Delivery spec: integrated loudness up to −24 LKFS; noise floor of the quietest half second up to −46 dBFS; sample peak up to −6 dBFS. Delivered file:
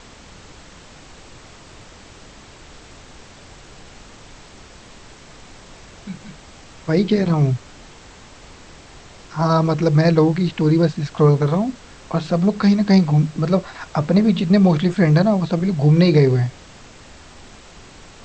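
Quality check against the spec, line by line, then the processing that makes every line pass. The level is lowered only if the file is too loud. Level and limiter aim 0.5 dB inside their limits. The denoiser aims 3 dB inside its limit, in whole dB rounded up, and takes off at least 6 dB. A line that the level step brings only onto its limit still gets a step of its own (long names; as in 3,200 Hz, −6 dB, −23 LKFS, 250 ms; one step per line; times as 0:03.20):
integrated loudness −17.5 LKFS: out of spec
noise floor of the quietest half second −43 dBFS: out of spec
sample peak −4.0 dBFS: out of spec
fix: level −7 dB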